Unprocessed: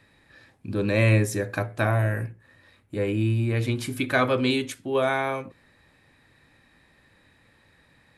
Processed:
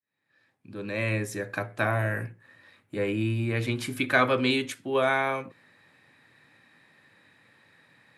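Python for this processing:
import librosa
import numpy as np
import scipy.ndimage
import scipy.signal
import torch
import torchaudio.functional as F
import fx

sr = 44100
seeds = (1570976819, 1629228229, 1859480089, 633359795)

y = fx.fade_in_head(x, sr, length_s=2.16)
y = scipy.signal.sosfilt(scipy.signal.butter(4, 110.0, 'highpass', fs=sr, output='sos'), y)
y = fx.peak_eq(y, sr, hz=1800.0, db=4.5, octaves=2.1)
y = y * 10.0 ** (-2.5 / 20.0)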